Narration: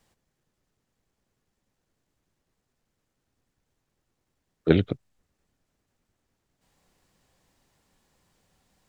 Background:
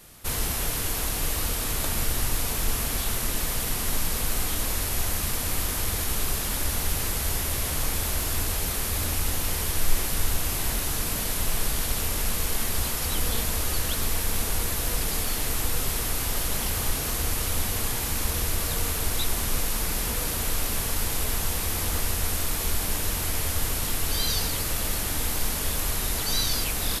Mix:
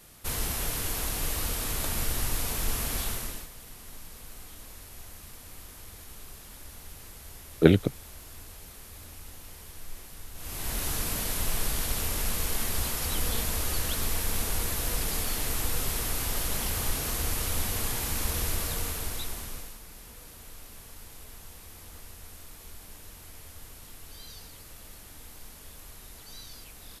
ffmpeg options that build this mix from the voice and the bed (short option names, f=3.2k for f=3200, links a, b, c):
-filter_complex "[0:a]adelay=2950,volume=1.5dB[a];[1:a]volume=12.5dB,afade=t=out:st=3.02:d=0.47:silence=0.16788,afade=t=in:st=10.34:d=0.52:silence=0.158489,afade=t=out:st=18.5:d=1.29:silence=0.141254[b];[a][b]amix=inputs=2:normalize=0"